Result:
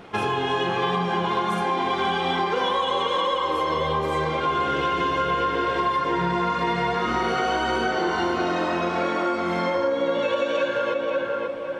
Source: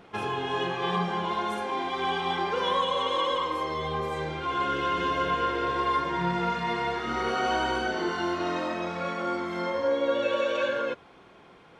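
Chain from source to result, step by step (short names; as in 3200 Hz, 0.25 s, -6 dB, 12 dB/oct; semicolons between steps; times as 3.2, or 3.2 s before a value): tape echo 0.534 s, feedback 48%, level -4 dB, low-pass 1700 Hz; compressor, threshold -28 dBFS, peak gain reduction 8.5 dB; gain +8 dB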